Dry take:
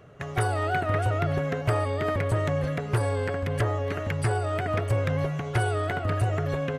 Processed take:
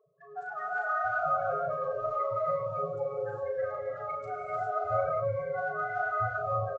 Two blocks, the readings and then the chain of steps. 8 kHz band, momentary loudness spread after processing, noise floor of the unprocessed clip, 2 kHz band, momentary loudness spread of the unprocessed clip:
under -25 dB, 7 LU, -35 dBFS, -2.0 dB, 3 LU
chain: HPF 1000 Hz 6 dB/oct; bell 1800 Hz -3.5 dB 0.39 oct; AGC gain up to 5 dB; loudest bins only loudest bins 4; phaser 0.8 Hz, delay 4.4 ms, feedback 55%; doubler 36 ms -5.5 dB; non-linear reverb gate 0.43 s rising, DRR -3.5 dB; downsampling 16000 Hz; gain -6.5 dB

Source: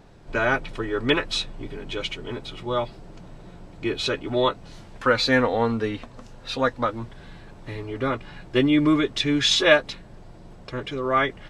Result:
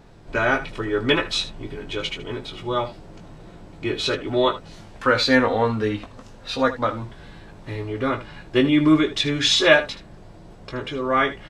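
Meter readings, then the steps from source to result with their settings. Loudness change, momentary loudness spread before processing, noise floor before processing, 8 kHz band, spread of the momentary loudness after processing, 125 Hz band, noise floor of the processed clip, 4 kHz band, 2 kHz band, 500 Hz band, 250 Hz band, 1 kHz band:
+2.0 dB, 17 LU, -46 dBFS, +2.0 dB, 16 LU, +2.0 dB, -45 dBFS, +2.0 dB, +2.0 dB, +2.0 dB, +2.0 dB, +2.0 dB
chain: early reflections 19 ms -6.5 dB, 77 ms -13.5 dB; gain +1 dB

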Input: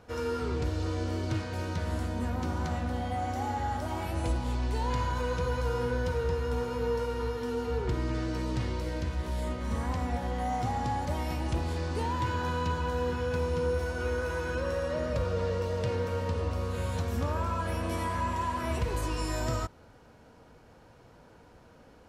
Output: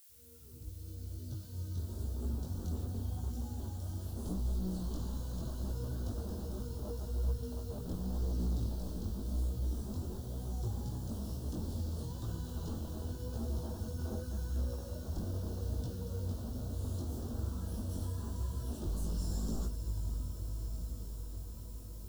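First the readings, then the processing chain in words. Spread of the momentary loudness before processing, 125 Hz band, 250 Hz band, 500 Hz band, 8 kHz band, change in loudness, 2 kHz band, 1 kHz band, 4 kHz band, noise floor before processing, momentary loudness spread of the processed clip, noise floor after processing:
3 LU, -5.0 dB, -6.5 dB, -16.0 dB, -4.5 dB, -8.0 dB, -24.5 dB, -21.5 dB, -11.0 dB, -56 dBFS, 6 LU, -46 dBFS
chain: opening faded in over 2.25 s; passive tone stack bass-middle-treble 10-0-1; on a send: diffused feedback echo 0.573 s, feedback 74%, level -9.5 dB; on the sum: wavefolder -40 dBFS; Butterworth band-stop 2200 Hz, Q 1.2; diffused feedback echo 1.588 s, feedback 68%, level -14 dB; added noise blue -74 dBFS; high shelf 4000 Hz +8 dB; chorus voices 2, 0.89 Hz, delay 20 ms, depth 3.5 ms; gain +10.5 dB

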